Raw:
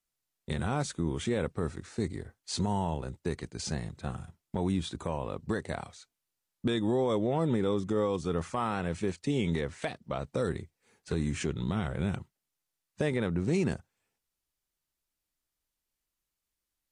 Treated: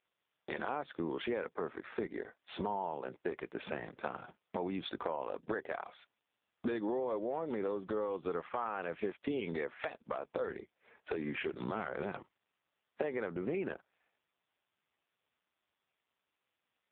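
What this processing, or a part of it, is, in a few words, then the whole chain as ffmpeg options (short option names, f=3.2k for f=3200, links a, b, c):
voicemail: -filter_complex "[0:a]asettb=1/sr,asplit=3[a][b][c];[a]atrim=end=11.364[d];[b]atrim=start=11.36:end=13.23,asetpts=PTS-STARTPTS,afade=t=in:d=0.004:c=qsin,afade=t=out:st=1.866:d=0.004:c=qsin,highshelf=f=3.1k:g=-2.5[e];[c]atrim=start=13.226[f];[d][e]acrossfade=d=0.004:c1=hsin:c2=qsin[g];[g][f]acrossfade=d=0.004:c1=qsin:c2=hsin,highpass=420,lowpass=2.9k,acompressor=threshold=-42dB:ratio=12,volume=10.5dB" -ar 8000 -c:a libopencore_amrnb -b:a 5150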